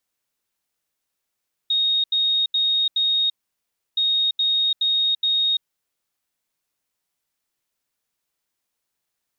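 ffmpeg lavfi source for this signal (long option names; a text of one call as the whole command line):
ffmpeg -f lavfi -i "aevalsrc='0.141*sin(2*PI*3730*t)*clip(min(mod(mod(t,2.27),0.42),0.34-mod(mod(t,2.27),0.42))/0.005,0,1)*lt(mod(t,2.27),1.68)':duration=4.54:sample_rate=44100" out.wav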